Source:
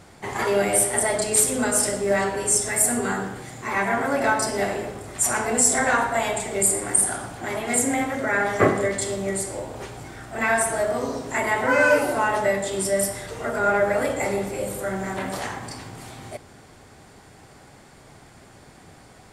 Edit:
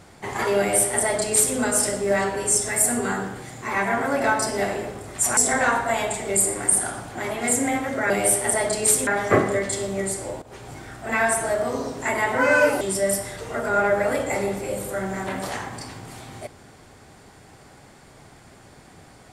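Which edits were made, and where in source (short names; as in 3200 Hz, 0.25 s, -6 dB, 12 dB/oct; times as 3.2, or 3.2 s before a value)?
0.59–1.56 copy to 8.36
5.37–5.63 cut
9.71–10.01 fade in, from -16 dB
12.1–12.71 cut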